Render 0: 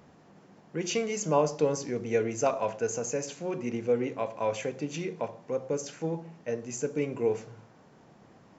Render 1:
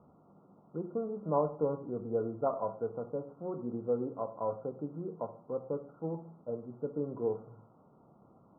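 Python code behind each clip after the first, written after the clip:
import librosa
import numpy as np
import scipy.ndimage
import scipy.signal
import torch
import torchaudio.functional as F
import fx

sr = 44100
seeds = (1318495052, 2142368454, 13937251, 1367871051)

y = scipy.signal.sosfilt(scipy.signal.cheby1(10, 1.0, 1400.0, 'lowpass', fs=sr, output='sos'), x)
y = F.gain(torch.from_numpy(y), -4.5).numpy()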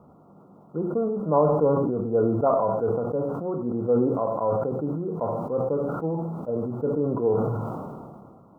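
y = fx.sustainer(x, sr, db_per_s=28.0)
y = F.gain(torch.from_numpy(y), 8.5).numpy()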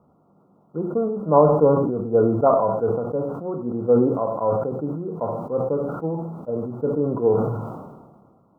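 y = fx.upward_expand(x, sr, threshold_db=-42.0, expansion=1.5)
y = F.gain(torch.from_numpy(y), 6.0).numpy()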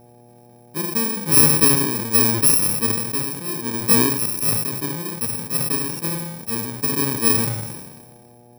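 y = fx.bit_reversed(x, sr, seeds[0], block=64)
y = fx.dmg_buzz(y, sr, base_hz=120.0, harmonics=7, level_db=-50.0, tilt_db=-2, odd_only=False)
y = F.gain(torch.from_numpy(y), 1.0).numpy()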